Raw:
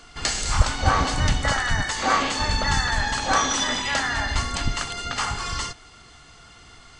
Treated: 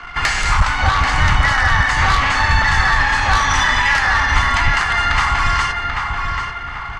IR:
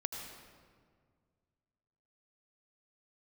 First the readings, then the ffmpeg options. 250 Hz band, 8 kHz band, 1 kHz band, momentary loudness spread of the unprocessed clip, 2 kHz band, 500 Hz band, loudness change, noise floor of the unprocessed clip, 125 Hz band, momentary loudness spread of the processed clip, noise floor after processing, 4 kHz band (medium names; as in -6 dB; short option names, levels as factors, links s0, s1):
+0.5 dB, -1.0 dB, +9.0 dB, 7 LU, +11.5 dB, +0.5 dB, +8.0 dB, -49 dBFS, +7.0 dB, 7 LU, -28 dBFS, +4.0 dB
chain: -filter_complex "[0:a]equalizer=f=250:t=o:w=1:g=-5,equalizer=f=500:t=o:w=1:g=-7,equalizer=f=1000:t=o:w=1:g=8,equalizer=f=2000:t=o:w=1:g=9,equalizer=f=4000:t=o:w=1:g=-5,equalizer=f=8000:t=o:w=1:g=-11,asplit=2[s0][s1];[s1]acompressor=threshold=0.0447:ratio=6,volume=1[s2];[s0][s2]amix=inputs=2:normalize=0,asoftclip=type=tanh:threshold=0.316,anlmdn=0.398,acrossover=split=140|3000[s3][s4][s5];[s4]acompressor=threshold=0.0794:ratio=6[s6];[s3][s6][s5]amix=inputs=3:normalize=0,asplit=2[s7][s8];[s8]adelay=787,lowpass=f=2700:p=1,volume=0.668,asplit=2[s9][s10];[s10]adelay=787,lowpass=f=2700:p=1,volume=0.46,asplit=2[s11][s12];[s12]adelay=787,lowpass=f=2700:p=1,volume=0.46,asplit=2[s13][s14];[s14]adelay=787,lowpass=f=2700:p=1,volume=0.46,asplit=2[s15][s16];[s16]adelay=787,lowpass=f=2700:p=1,volume=0.46,asplit=2[s17][s18];[s18]adelay=787,lowpass=f=2700:p=1,volume=0.46[s19];[s7][s9][s11][s13][s15][s17][s19]amix=inputs=7:normalize=0,volume=2"